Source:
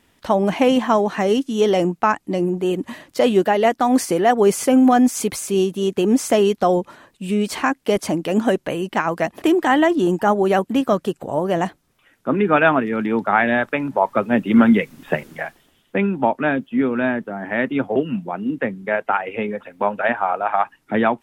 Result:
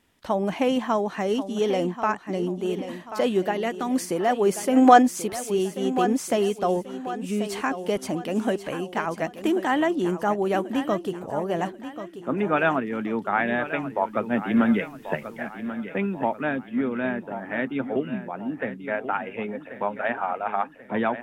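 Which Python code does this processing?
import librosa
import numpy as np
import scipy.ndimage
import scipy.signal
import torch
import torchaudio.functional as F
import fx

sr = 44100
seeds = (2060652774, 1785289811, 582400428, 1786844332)

p1 = fx.peak_eq(x, sr, hz=760.0, db=-7.0, octaves=1.1, at=(3.51, 4.05))
p2 = fx.spec_box(p1, sr, start_s=4.77, length_s=0.25, low_hz=260.0, high_hz=9100.0, gain_db=11)
p3 = p2 + fx.echo_feedback(p2, sr, ms=1086, feedback_pct=41, wet_db=-11.5, dry=0)
y = p3 * 10.0 ** (-7.0 / 20.0)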